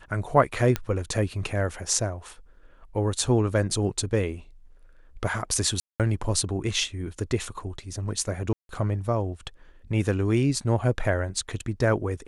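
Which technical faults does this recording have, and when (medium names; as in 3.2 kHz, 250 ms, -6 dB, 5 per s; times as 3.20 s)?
0.76 s: pop -11 dBFS
5.80–6.00 s: dropout 197 ms
8.53–8.69 s: dropout 162 ms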